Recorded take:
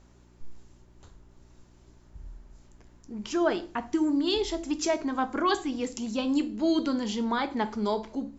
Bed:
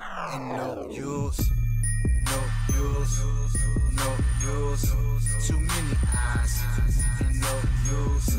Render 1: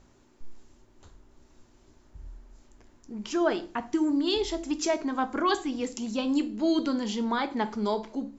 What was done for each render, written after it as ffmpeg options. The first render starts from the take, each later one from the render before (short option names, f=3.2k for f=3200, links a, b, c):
-af "bandreject=f=60:t=h:w=4,bandreject=f=120:t=h:w=4,bandreject=f=180:t=h:w=4"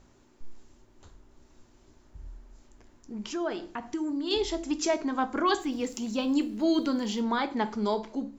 -filter_complex "[0:a]asettb=1/sr,asplit=3[a][b][c];[a]atrim=end=3.264[d];[b]atrim=start=3.26:end=4.31,asetpts=PTS-STARTPTS,afade=t=in:d=0.004:c=qsin,afade=t=out:st=1.046:d=0.004:c=qsin,acompressor=threshold=-38dB:ratio=1.5:attack=3.2:release=140:knee=1:detection=peak[e];[c]atrim=start=4.306[f];[d][e]acrossfade=d=0.004:c1=hsin:c2=qsin[g];[g][f]acrossfade=d=0.004:c1=qsin:c2=hsin,asplit=3[h][i][j];[h]afade=t=out:st=5.59:d=0.02[k];[i]aeval=exprs='val(0)*gte(abs(val(0)),0.00266)':c=same,afade=t=in:st=5.59:d=0.02,afade=t=out:st=7.19:d=0.02[l];[j]afade=t=in:st=7.19:d=0.02[m];[k][l][m]amix=inputs=3:normalize=0"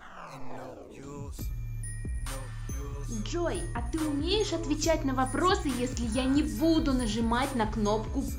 -filter_complex "[1:a]volume=-12dB[a];[0:a][a]amix=inputs=2:normalize=0"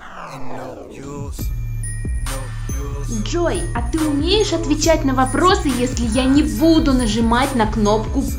-af "volume=12dB,alimiter=limit=-2dB:level=0:latency=1"